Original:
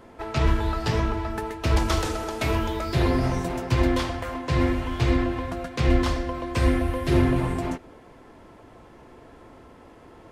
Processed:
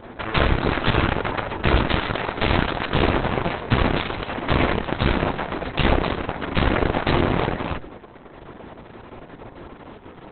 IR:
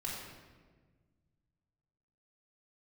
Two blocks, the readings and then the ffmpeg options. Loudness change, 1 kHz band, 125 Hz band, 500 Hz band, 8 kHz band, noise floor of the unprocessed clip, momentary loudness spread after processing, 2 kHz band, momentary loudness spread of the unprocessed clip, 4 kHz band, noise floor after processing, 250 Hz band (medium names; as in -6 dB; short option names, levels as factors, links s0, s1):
+2.5 dB, +5.5 dB, +0.5 dB, +3.5 dB, under -40 dB, -49 dBFS, 20 LU, +8.0 dB, 7 LU, +6.5 dB, -44 dBFS, +1.0 dB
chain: -af "alimiter=limit=0.178:level=0:latency=1:release=292,aeval=exprs='0.178*(cos(1*acos(clip(val(0)/0.178,-1,1)))-cos(1*PI/2))+0.0708*(cos(4*acos(clip(val(0)/0.178,-1,1)))-cos(4*PI/2))+0.0708*(cos(7*acos(clip(val(0)/0.178,-1,1)))-cos(7*PI/2))':c=same,volume=1.68" -ar 48000 -c:a libopus -b:a 6k